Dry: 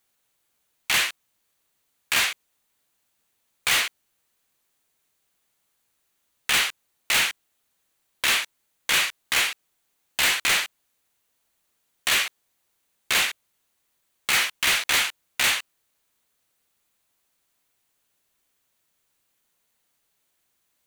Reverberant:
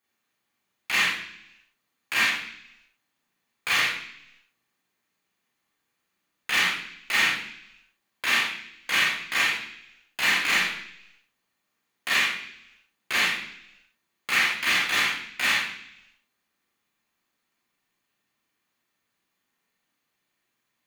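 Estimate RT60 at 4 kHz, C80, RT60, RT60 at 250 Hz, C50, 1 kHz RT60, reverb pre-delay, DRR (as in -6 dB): 0.95 s, 8.0 dB, 0.70 s, 0.90 s, 4.5 dB, 0.70 s, 32 ms, -5.0 dB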